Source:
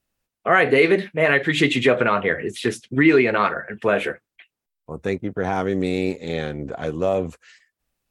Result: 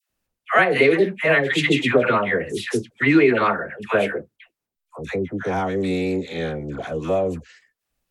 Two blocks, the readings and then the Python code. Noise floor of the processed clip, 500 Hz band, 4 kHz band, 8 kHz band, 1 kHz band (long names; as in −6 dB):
−83 dBFS, 0.0 dB, 0.0 dB, 0.0 dB, 0.0 dB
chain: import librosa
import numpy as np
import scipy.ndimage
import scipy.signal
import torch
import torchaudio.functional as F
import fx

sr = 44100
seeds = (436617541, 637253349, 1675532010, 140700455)

y = fx.dispersion(x, sr, late='lows', ms=103.0, hz=860.0)